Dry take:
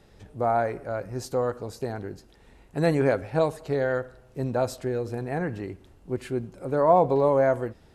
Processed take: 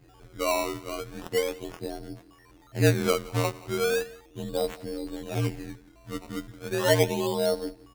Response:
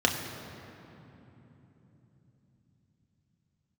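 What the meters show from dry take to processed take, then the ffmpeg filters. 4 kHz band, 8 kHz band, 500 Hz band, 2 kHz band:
+12.0 dB, +10.0 dB, -3.5 dB, +2.0 dB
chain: -filter_complex "[0:a]equalizer=f=1.4k:w=1.3:g=-8.5,aecho=1:1:6.2:0.9,afftfilt=real='hypot(re,im)*cos(PI*b)':imag='0':win_size=2048:overlap=0.75,acrossover=split=750[a][b];[b]volume=23.5dB,asoftclip=hard,volume=-23.5dB[c];[a][c]amix=inputs=2:normalize=0,aeval=exprs='val(0)+0.00158*sin(2*PI*9200*n/s)':c=same,afreqshift=-55,acrusher=samples=18:mix=1:aa=0.000001:lfo=1:lforange=18:lforate=0.36,aecho=1:1:176:0.0841"

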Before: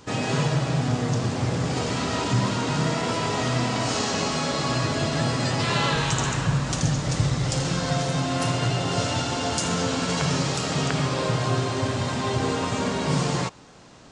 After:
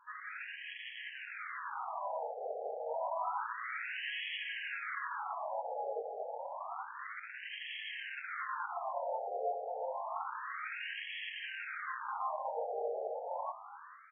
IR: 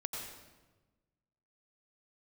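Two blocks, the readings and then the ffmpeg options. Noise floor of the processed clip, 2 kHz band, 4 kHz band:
-50 dBFS, -10.0 dB, -18.5 dB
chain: -filter_complex "[0:a]dynaudnorm=f=240:g=5:m=10dB,asplit=4[a][b][c][d];[b]adelay=442,afreqshift=110,volume=-22dB[e];[c]adelay=884,afreqshift=220,volume=-29.5dB[f];[d]adelay=1326,afreqshift=330,volume=-37.1dB[g];[a][e][f][g]amix=inputs=4:normalize=0,flanger=delay=19:depth=6.4:speed=0.7,asoftclip=type=tanh:threshold=-24dB,afftfilt=real='re*between(b*sr/1024,580*pow(2400/580,0.5+0.5*sin(2*PI*0.29*pts/sr))/1.41,580*pow(2400/580,0.5+0.5*sin(2*PI*0.29*pts/sr))*1.41)':imag='im*between(b*sr/1024,580*pow(2400/580,0.5+0.5*sin(2*PI*0.29*pts/sr))/1.41,580*pow(2400/580,0.5+0.5*sin(2*PI*0.29*pts/sr))*1.41)':win_size=1024:overlap=0.75,volume=-4dB"

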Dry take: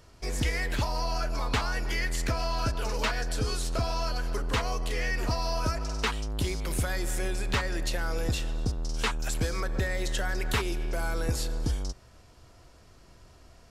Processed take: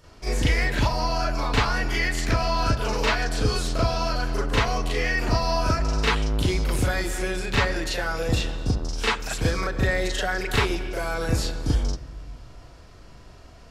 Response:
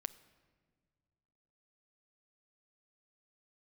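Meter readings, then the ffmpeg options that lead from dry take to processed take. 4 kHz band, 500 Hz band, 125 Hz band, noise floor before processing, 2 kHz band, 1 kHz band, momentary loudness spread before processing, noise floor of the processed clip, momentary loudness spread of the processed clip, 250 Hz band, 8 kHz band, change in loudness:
+6.0 dB, +7.0 dB, +6.0 dB, -55 dBFS, +7.0 dB, +7.0 dB, 3 LU, -47 dBFS, 4 LU, +7.0 dB, +2.5 dB, +6.0 dB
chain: -filter_complex "[0:a]asplit=2[a][b];[1:a]atrim=start_sample=2205,lowpass=5.2k,adelay=38[c];[b][c]afir=irnorm=-1:irlink=0,volume=8.5dB[d];[a][d]amix=inputs=2:normalize=0"

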